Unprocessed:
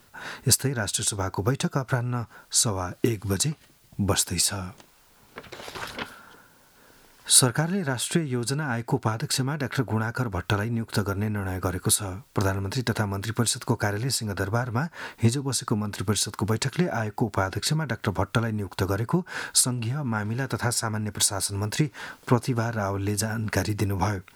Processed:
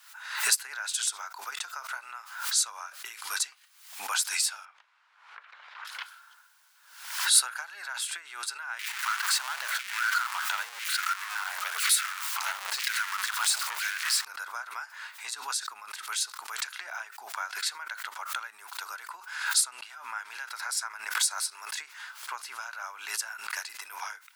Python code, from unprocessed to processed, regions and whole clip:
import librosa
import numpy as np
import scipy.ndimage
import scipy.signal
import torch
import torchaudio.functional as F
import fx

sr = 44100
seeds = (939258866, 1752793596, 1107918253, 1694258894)

y = fx.chain(x, sr, fx.lowpass(hz=2000.0, slope=12),
    fx.band_squash(depth_pct=40), at=(4.65, 5.85))
y = fx.chain(y, sr, fx.zero_step(step_db=-22.0),
    fx.filter_lfo_highpass(shape='saw_down', hz=1.0, low_hz=440.0, high_hz=2400.0, q=2.0),
    fx.transformer_sat(knee_hz=2400.0), at=(8.79, 14.25))
y = scipy.signal.sosfilt(scipy.signal.butter(4, 1100.0, 'highpass', fs=sr, output='sos'), y)
y = fx.peak_eq(y, sr, hz=13000.0, db=-3.5, octaves=0.2)
y = fx.pre_swell(y, sr, db_per_s=80.0)
y = F.gain(torch.from_numpy(y), -4.0).numpy()